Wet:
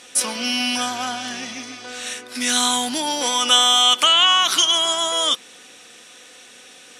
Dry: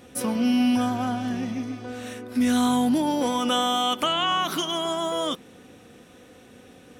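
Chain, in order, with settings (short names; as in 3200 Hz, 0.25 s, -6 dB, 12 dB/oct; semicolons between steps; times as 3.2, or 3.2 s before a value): weighting filter ITU-R 468; gain +4 dB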